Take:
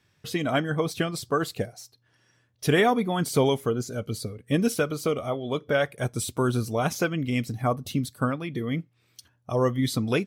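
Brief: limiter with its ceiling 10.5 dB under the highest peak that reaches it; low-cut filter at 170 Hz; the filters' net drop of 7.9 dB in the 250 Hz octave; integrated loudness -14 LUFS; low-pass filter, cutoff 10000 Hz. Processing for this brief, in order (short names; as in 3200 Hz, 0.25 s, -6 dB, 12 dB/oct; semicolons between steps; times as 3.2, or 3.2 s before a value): HPF 170 Hz; LPF 10000 Hz; bell 250 Hz -9 dB; gain +19 dB; limiter -2 dBFS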